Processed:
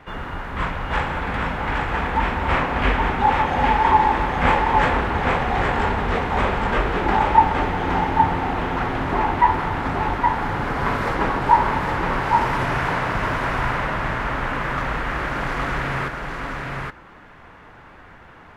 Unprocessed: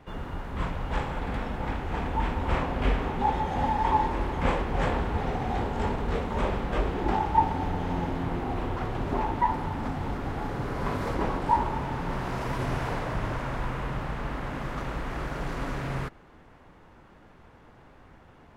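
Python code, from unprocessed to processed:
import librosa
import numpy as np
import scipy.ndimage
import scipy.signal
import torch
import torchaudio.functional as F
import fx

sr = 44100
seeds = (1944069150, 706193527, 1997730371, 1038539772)

y = fx.peak_eq(x, sr, hz=1700.0, db=9.5, octaves=2.1)
y = y + 10.0 ** (-3.5 / 20.0) * np.pad(y, (int(818 * sr / 1000.0), 0))[:len(y)]
y = y * 10.0 ** (3.0 / 20.0)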